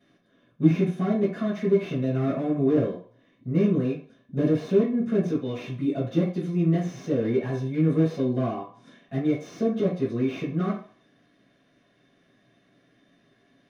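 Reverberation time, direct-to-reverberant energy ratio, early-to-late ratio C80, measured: 0.45 s, −10.5 dB, 11.0 dB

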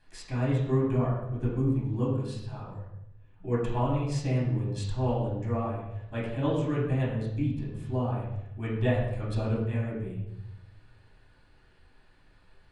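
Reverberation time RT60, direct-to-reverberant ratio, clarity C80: 0.80 s, −7.5 dB, 5.0 dB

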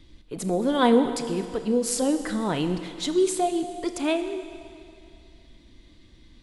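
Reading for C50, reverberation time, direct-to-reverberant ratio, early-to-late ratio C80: 9.5 dB, 2.5 s, 8.0 dB, 10.0 dB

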